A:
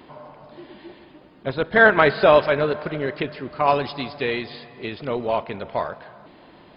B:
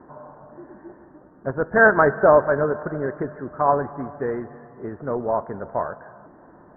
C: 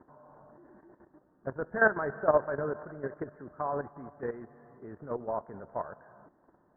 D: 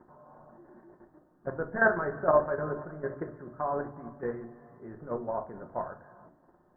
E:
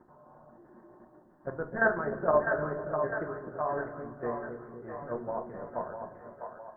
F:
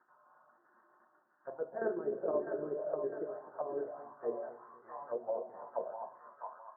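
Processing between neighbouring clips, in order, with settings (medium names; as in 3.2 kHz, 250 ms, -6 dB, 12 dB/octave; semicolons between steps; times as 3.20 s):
steep low-pass 1.7 kHz 72 dB/octave
level held to a coarse grid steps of 12 dB; trim -7.5 dB
simulated room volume 210 m³, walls furnished, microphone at 0.93 m
two-band feedback delay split 500 Hz, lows 254 ms, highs 653 ms, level -5.5 dB; trim -2 dB
auto-wah 380–1500 Hz, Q 4, down, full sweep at -28 dBFS; trim +2.5 dB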